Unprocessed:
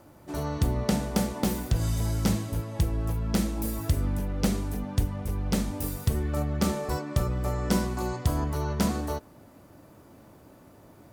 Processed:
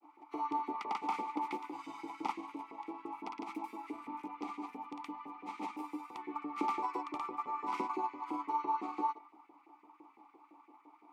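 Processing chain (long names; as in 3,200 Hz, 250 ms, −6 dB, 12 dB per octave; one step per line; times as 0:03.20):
parametric band 1,200 Hz +13 dB 0.25 octaves
hum removal 131.3 Hz, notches 38
granular cloud, pitch spread up and down by 0 semitones
auto-filter high-pass saw up 5.9 Hz 420–1,900 Hz
formant filter u
level +7.5 dB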